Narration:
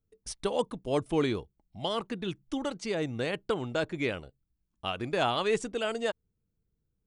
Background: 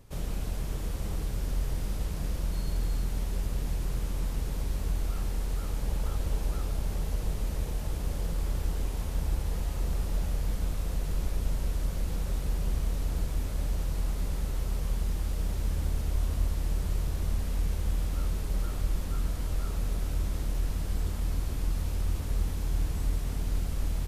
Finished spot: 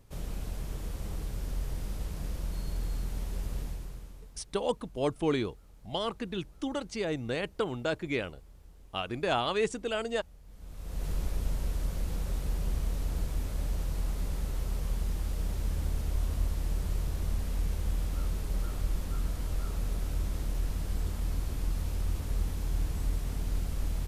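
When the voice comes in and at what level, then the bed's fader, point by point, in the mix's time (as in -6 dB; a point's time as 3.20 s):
4.10 s, -1.0 dB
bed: 3.60 s -4 dB
4.46 s -24 dB
10.44 s -24 dB
11.05 s -2 dB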